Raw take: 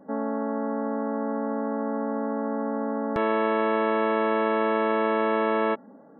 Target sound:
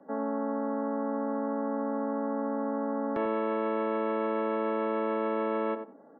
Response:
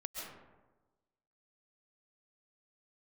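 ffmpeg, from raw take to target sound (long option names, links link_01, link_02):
-filter_complex "[0:a]acrossover=split=220 3500:gain=0.224 1 0.224[link_01][link_02][link_03];[link_01][link_02][link_03]amix=inputs=3:normalize=0,acrossover=split=420|570[link_04][link_05][link_06];[link_06]alimiter=level_in=2dB:limit=-24dB:level=0:latency=1:release=336,volume=-2dB[link_07];[link_04][link_05][link_07]amix=inputs=3:normalize=0,asplit=2[link_08][link_09];[link_09]adelay=90,lowpass=frequency=1400:poles=1,volume=-7.5dB,asplit=2[link_10][link_11];[link_11]adelay=90,lowpass=frequency=1400:poles=1,volume=0.18,asplit=2[link_12][link_13];[link_13]adelay=90,lowpass=frequency=1400:poles=1,volume=0.18[link_14];[link_08][link_10][link_12][link_14]amix=inputs=4:normalize=0,volume=-2.5dB"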